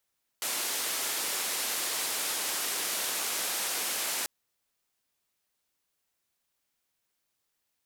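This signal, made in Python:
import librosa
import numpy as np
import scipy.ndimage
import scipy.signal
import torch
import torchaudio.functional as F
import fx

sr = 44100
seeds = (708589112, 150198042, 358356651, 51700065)

y = fx.band_noise(sr, seeds[0], length_s=3.84, low_hz=310.0, high_hz=13000.0, level_db=-32.0)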